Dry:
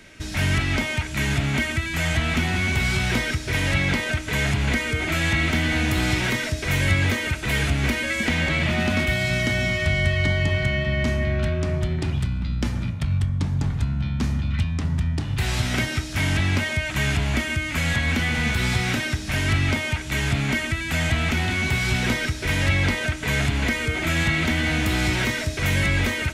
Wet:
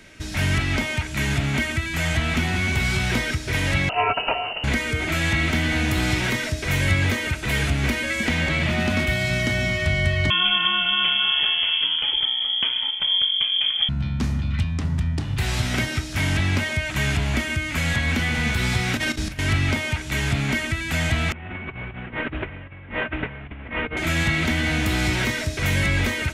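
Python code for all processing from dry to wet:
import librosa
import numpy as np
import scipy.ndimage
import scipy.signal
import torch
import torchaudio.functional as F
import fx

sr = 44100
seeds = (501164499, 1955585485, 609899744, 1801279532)

y = fx.chain(x, sr, fx.freq_invert(carrier_hz=2900),
    fx.over_compress(threshold_db=-26.0, ratio=-0.5),
    fx.peak_eq(hz=650.0, db=10.5, octaves=0.88), at=(3.89, 4.64))
y = fx.chain(y, sr, fx.highpass(hz=42.0, slope=12),
    fx.peak_eq(hz=930.0, db=8.5, octaves=1.0),
    fx.freq_invert(carrier_hz=3300), at=(10.3, 13.89))
y = fx.chain(y, sr, fx.low_shelf(hz=100.0, db=8.0),
    fx.over_compress(threshold_db=-27.0, ratio=-0.5),
    fx.doubler(ms=38.0, db=-11.0), at=(18.97, 19.39))
y = fx.chain(y, sr, fx.cvsd(bps=16000),
    fx.over_compress(threshold_db=-30.0, ratio=-0.5), at=(21.32, 23.97))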